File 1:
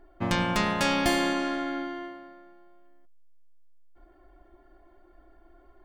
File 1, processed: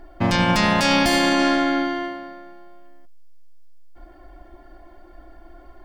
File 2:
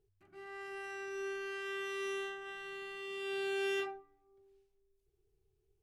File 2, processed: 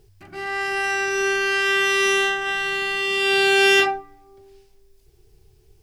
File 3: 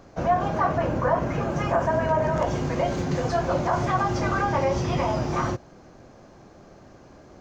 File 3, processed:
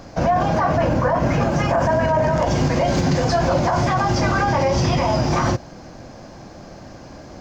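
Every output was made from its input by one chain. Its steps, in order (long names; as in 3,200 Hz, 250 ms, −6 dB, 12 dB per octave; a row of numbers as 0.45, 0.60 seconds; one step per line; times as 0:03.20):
thirty-one-band graphic EQ 400 Hz −7 dB, 1,250 Hz −4 dB, 5,000 Hz +6 dB
brickwall limiter −21 dBFS
loudness normalisation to −19 LKFS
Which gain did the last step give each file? +12.0, +23.5, +11.0 decibels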